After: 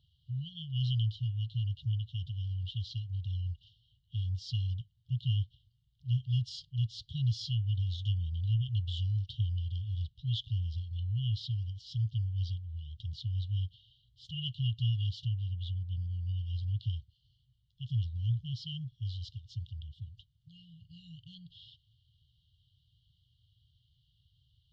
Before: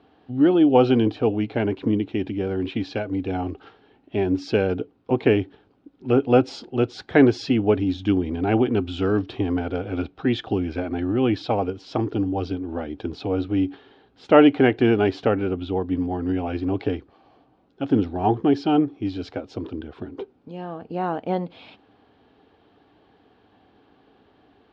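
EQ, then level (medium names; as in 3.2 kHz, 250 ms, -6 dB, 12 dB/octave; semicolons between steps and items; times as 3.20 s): brick-wall FIR band-stop 150–2800 Hz; Butterworth band-stop 1.7 kHz, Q 1.1; treble shelf 5.1 kHz -11.5 dB; 0.0 dB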